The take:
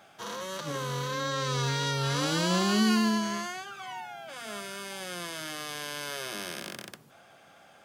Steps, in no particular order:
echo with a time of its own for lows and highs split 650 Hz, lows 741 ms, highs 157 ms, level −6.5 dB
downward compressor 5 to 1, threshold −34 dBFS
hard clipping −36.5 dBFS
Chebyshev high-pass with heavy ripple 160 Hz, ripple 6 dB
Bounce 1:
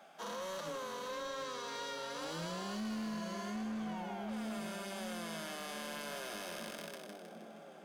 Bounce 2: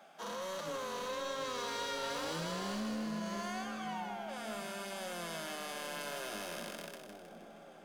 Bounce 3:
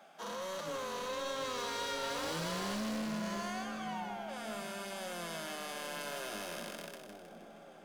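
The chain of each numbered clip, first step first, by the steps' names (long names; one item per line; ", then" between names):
echo with a time of its own for lows and highs, then downward compressor, then Chebyshev high-pass with heavy ripple, then hard clipping
Chebyshev high-pass with heavy ripple, then downward compressor, then hard clipping, then echo with a time of its own for lows and highs
Chebyshev high-pass with heavy ripple, then hard clipping, then downward compressor, then echo with a time of its own for lows and highs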